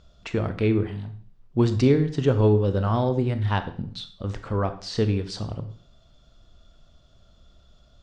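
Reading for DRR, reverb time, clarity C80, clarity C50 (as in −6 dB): 9.0 dB, 0.50 s, 15.5 dB, 12.0 dB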